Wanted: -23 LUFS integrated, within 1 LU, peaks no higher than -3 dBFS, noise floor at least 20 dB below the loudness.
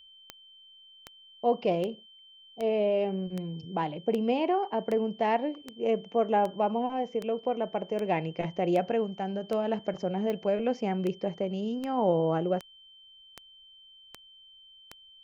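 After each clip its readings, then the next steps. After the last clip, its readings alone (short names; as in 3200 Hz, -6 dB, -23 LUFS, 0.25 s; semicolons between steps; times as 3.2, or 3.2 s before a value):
clicks 20; steady tone 3100 Hz; tone level -52 dBFS; loudness -29.5 LUFS; peak -14.0 dBFS; loudness target -23.0 LUFS
-> de-click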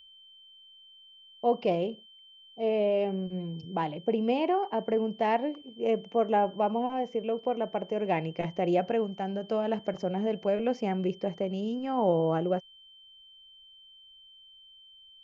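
clicks 0; steady tone 3100 Hz; tone level -52 dBFS
-> notch 3100 Hz, Q 30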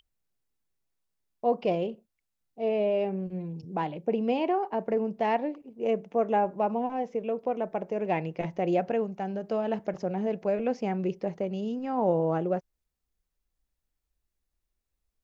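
steady tone none; loudness -29.5 LUFS; peak -14.0 dBFS; loudness target -23.0 LUFS
-> gain +6.5 dB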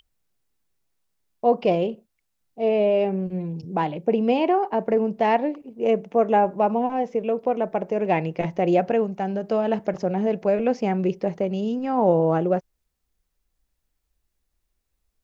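loudness -23.0 LUFS; peak -7.5 dBFS; noise floor -77 dBFS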